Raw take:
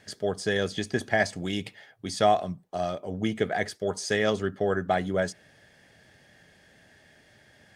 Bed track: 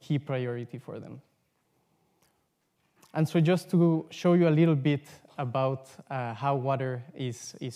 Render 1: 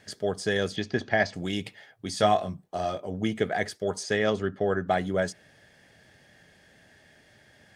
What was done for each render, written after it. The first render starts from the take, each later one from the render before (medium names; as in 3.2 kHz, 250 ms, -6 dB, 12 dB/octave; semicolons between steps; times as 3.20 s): 0.76–1.34 s: low-pass 5.4 kHz 24 dB/octave; 2.17–3.07 s: doubling 20 ms -6 dB; 4.03–4.87 s: treble shelf 7 kHz -11 dB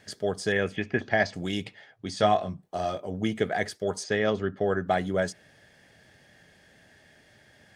0.52–1.02 s: resonant high shelf 3.2 kHz -9 dB, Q 3; 1.64–2.63 s: distance through air 59 m; 4.04–4.57 s: distance through air 86 m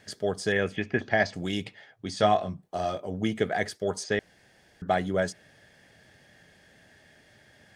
4.19–4.82 s: room tone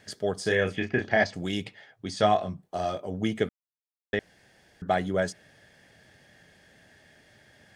0.42–1.24 s: doubling 32 ms -5 dB; 3.49–4.13 s: mute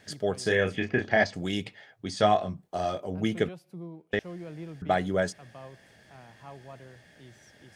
add bed track -18.5 dB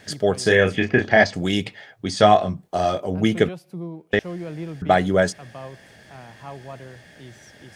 trim +8.5 dB; peak limiter -2 dBFS, peak gain reduction 1 dB